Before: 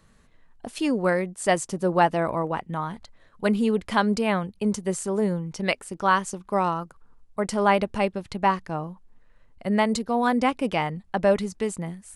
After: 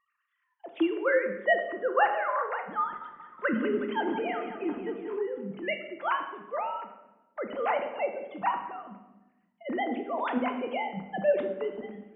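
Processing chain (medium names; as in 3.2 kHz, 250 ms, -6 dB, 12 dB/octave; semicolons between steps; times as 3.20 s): formants replaced by sine waves; 1.07–3.69 s: time-frequency box 1–2.2 kHz +8 dB; simulated room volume 500 m³, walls mixed, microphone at 0.82 m; 2.83–5.17 s: modulated delay 183 ms, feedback 65%, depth 55 cents, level -11 dB; trim -7.5 dB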